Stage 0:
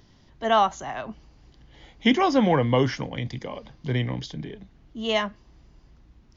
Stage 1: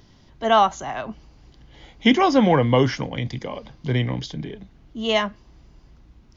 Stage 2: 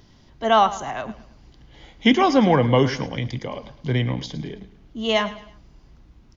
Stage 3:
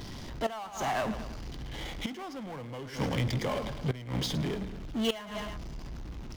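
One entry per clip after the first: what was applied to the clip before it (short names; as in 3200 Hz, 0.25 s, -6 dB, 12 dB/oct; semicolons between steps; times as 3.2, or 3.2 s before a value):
notch 1800 Hz, Q 26; gain +3.5 dB
feedback echo 0.108 s, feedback 38%, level -15.5 dB
flipped gate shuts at -13 dBFS, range -33 dB; power-law curve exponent 0.5; gain -8 dB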